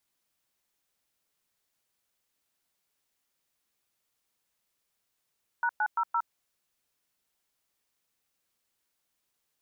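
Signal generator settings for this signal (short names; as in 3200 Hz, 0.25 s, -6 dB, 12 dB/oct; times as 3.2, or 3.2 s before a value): DTMF "#900", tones 62 ms, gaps 0.109 s, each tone -27 dBFS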